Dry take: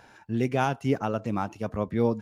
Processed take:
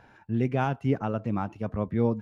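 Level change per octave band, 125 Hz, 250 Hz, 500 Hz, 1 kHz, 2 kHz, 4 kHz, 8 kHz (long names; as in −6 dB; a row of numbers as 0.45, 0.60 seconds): +2.0 dB, 0.0 dB, −2.0 dB, −2.5 dB, −3.0 dB, −6.5 dB, can't be measured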